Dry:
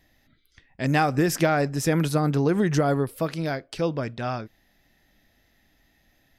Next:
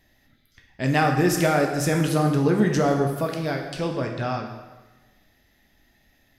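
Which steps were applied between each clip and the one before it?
plate-style reverb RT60 1.2 s, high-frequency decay 0.85×, DRR 2 dB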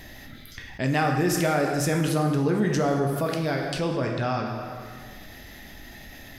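fast leveller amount 50%; gain -5 dB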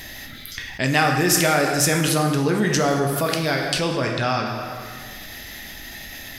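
tilt shelf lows -5 dB, about 1400 Hz; gain +7 dB

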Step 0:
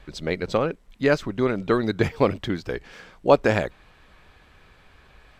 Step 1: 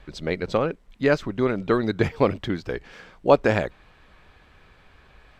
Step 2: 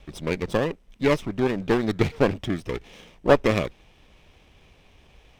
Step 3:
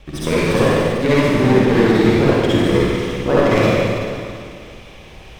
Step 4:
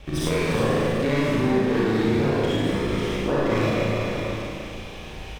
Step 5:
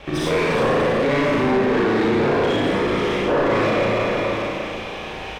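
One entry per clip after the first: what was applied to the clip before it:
high shelf 6200 Hz -6 dB
minimum comb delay 0.33 ms
compressor, threshold -24 dBFS, peak gain reduction 13 dB; reverb RT60 2.3 s, pre-delay 49 ms, DRR -9.5 dB; gain +6 dB
compressor 3:1, threshold -24 dBFS, peak gain reduction 12 dB; doubler 36 ms -2 dB
overdrive pedal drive 20 dB, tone 1500 Hz, clips at -9.5 dBFS

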